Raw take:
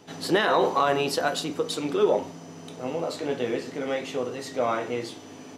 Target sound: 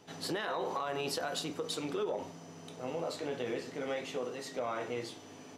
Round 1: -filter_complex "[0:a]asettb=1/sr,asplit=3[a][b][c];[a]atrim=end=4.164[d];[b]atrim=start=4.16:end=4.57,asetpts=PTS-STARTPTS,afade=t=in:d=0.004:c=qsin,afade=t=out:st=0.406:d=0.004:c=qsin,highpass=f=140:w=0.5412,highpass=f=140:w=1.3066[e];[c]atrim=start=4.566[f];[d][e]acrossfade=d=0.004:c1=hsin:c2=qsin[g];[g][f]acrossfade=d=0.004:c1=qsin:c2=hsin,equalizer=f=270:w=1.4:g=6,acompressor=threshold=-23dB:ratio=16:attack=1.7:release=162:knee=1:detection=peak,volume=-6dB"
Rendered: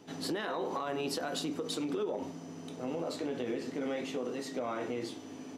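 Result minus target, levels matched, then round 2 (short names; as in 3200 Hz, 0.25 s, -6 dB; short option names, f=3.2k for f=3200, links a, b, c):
250 Hz band +4.5 dB
-filter_complex "[0:a]asettb=1/sr,asplit=3[a][b][c];[a]atrim=end=4.164[d];[b]atrim=start=4.16:end=4.57,asetpts=PTS-STARTPTS,afade=t=in:d=0.004:c=qsin,afade=t=out:st=0.406:d=0.004:c=qsin,highpass=f=140:w=0.5412,highpass=f=140:w=1.3066[e];[c]atrim=start=4.566[f];[d][e]acrossfade=d=0.004:c1=hsin:c2=qsin[g];[g][f]acrossfade=d=0.004:c1=qsin:c2=hsin,equalizer=f=270:w=1.4:g=-3,acompressor=threshold=-23dB:ratio=16:attack=1.7:release=162:knee=1:detection=peak,volume=-6dB"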